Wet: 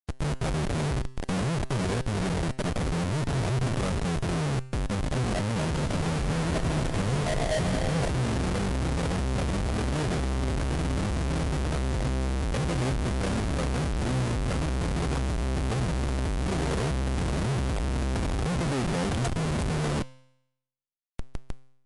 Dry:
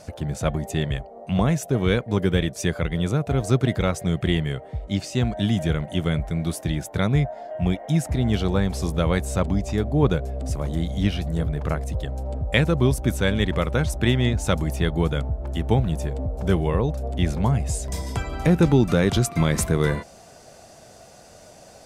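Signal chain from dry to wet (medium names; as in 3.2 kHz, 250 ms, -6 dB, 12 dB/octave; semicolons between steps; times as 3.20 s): treble shelf 2.1 kHz -11.5 dB; level rider gain up to 11.5 dB; peak limiter -8.5 dBFS, peak gain reduction 7 dB; Schmitt trigger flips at -26.5 dBFS; feedback comb 130 Hz, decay 0.79 s, harmonics all, mix 50%; 5.61–8.10 s: multi-head delay 73 ms, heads second and third, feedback 63%, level -10 dB; trim -2 dB; MP3 56 kbps 24 kHz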